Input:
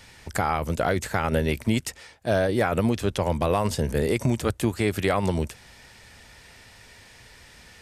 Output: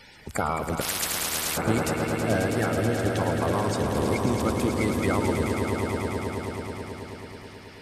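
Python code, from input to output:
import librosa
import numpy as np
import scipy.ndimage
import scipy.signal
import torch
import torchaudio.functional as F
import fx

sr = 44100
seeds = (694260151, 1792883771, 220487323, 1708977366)

y = fx.spec_quant(x, sr, step_db=30)
y = fx.rider(y, sr, range_db=4, speed_s=0.5)
y = fx.echo_swell(y, sr, ms=108, loudest=5, wet_db=-8)
y = fx.spectral_comp(y, sr, ratio=10.0, at=(0.8, 1.56), fade=0.02)
y = F.gain(torch.from_numpy(y), -3.0).numpy()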